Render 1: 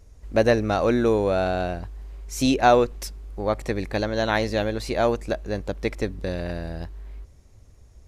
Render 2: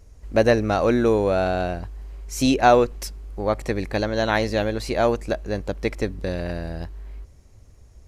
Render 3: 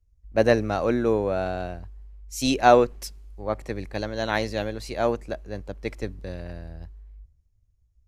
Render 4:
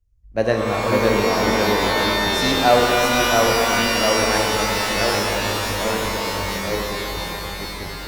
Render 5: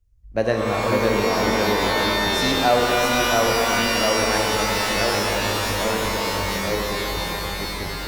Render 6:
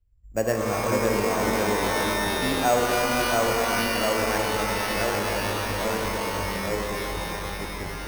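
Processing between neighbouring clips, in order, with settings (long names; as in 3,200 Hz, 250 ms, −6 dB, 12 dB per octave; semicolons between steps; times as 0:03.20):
notch filter 3,600 Hz, Q 23; level +1.5 dB
multiband upward and downward expander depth 70%; level −5 dB
delay with pitch and tempo change per echo 523 ms, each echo −1 semitone, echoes 2; reverb with rising layers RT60 3.9 s, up +12 semitones, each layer −2 dB, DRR 0 dB; level −1 dB
downward compressor 1.5 to 1, threshold −26 dBFS, peak gain reduction 6 dB; level +2.5 dB
bad sample-rate conversion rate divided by 6×, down filtered, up hold; level −3.5 dB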